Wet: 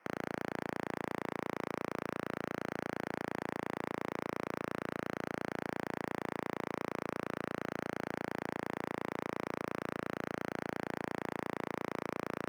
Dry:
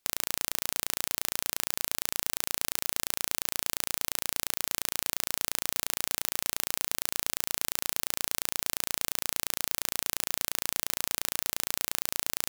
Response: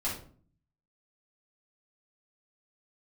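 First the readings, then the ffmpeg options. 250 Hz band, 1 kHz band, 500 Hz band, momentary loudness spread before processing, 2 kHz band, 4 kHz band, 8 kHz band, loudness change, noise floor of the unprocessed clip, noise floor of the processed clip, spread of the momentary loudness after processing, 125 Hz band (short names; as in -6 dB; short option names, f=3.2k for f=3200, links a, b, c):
+8.5 dB, +1.5 dB, +6.5 dB, 0 LU, -3.5 dB, -19.5 dB, -28.0 dB, -10.0 dB, -75 dBFS, -65 dBFS, 1 LU, +3.5 dB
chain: -filter_complex "[0:a]highpass=f=330:t=q:w=0.5412,highpass=f=330:t=q:w=1.307,lowpass=f=2.4k:t=q:w=0.5176,lowpass=f=2.4k:t=q:w=0.7071,lowpass=f=2.4k:t=q:w=1.932,afreqshift=-200,asplit=2[a][b];[b]highpass=f=720:p=1,volume=32dB,asoftclip=type=tanh:threshold=-22.5dB[c];[a][c]amix=inputs=2:normalize=0,lowpass=f=1.1k:p=1,volume=-6dB,asplit=2[d][e];[e]acrusher=samples=12:mix=1:aa=0.000001,volume=-12dB[f];[d][f]amix=inputs=2:normalize=0,highpass=f=220:p=1"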